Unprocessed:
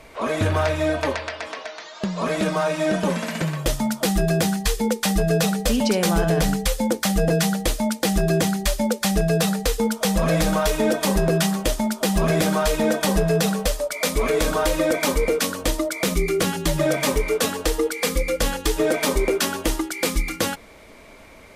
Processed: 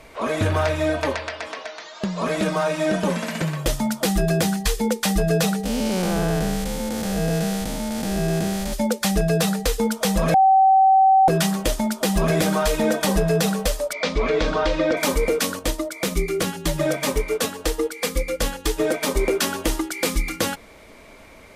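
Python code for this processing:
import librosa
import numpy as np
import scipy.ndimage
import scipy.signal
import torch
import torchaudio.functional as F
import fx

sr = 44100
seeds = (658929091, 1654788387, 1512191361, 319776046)

y = fx.spec_blur(x, sr, span_ms=277.0, at=(5.63, 8.72), fade=0.02)
y = fx.lowpass(y, sr, hz=5000.0, slope=24, at=(13.93, 14.97))
y = fx.upward_expand(y, sr, threshold_db=-29.0, expansion=1.5, at=(15.59, 19.15))
y = fx.edit(y, sr, fx.bleep(start_s=10.34, length_s=0.94, hz=768.0, db=-11.0), tone=tone)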